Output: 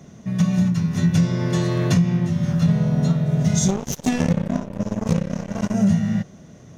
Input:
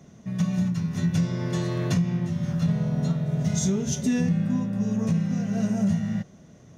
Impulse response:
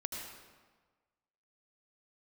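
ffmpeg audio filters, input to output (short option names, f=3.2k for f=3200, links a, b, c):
-filter_complex "[0:a]asettb=1/sr,asplit=3[a][b][c];[a]atrim=end=3.684[d];[b]atrim=start=3.68:end=5.74,asetpts=PTS-STARTPTS,afade=t=in:d=0.004:c=qsin,afade=t=out:st=2.056:d=0.004:c=qsin,aeval=exprs='0.168*(cos(1*acos(clip(val(0)/0.168,-1,1)))-cos(1*PI/2))+0.0531*(cos(3*acos(clip(val(0)/0.168,-1,1)))-cos(3*PI/2))+0.00668*(cos(5*acos(clip(val(0)/0.168,-1,1)))-cos(5*PI/2))+0.00299*(cos(6*acos(clip(val(0)/0.168,-1,1)))-cos(6*PI/2))+0.00841*(cos(7*acos(clip(val(0)/0.168,-1,1)))-cos(7*PI/2))':c=same[e];[c]atrim=start=5.736[f];[d][e]acrossfade=d=0.004:c1=hsin:c2=qsin[g];[g][f]acrossfade=d=0.004:c1=qsin:c2=hsin,volume=6dB"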